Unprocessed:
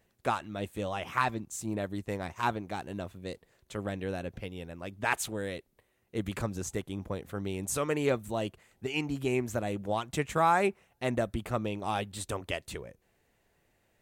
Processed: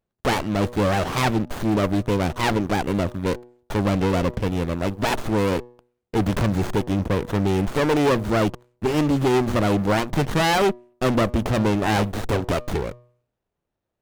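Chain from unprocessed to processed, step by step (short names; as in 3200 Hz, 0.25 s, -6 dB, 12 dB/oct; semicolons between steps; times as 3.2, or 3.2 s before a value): sample leveller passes 5; de-hum 121.5 Hz, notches 5; running maximum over 17 samples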